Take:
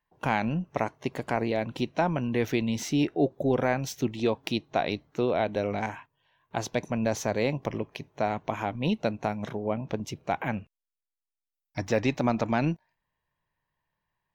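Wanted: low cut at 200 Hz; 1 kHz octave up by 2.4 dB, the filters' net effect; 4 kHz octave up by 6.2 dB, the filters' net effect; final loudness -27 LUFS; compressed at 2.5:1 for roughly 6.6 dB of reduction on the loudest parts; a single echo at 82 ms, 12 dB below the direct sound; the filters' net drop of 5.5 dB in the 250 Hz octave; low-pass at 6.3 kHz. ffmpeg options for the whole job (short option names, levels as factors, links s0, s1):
-af "highpass=200,lowpass=6300,equalizer=f=250:t=o:g=-5,equalizer=f=1000:t=o:g=3.5,equalizer=f=4000:t=o:g=8,acompressor=threshold=0.0316:ratio=2.5,aecho=1:1:82:0.251,volume=2.37"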